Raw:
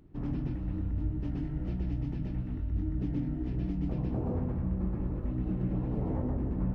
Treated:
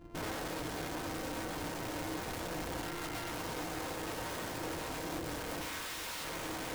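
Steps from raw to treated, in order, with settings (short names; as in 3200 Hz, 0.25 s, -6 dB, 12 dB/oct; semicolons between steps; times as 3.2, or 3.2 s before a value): sample sorter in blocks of 128 samples; high shelf 2500 Hz -10.5 dB; 5.61–6.23 whine 1600 Hz -40 dBFS; thin delay 0.237 s, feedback 59%, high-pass 1900 Hz, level -4 dB; soft clip -24.5 dBFS, distortion -20 dB; 2.81–3.31 HPF 340 Hz 12 dB/oct; wrapped overs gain 37.5 dB; reverb RT60 0.60 s, pre-delay 3 ms, DRR 1.5 dB; vocal rider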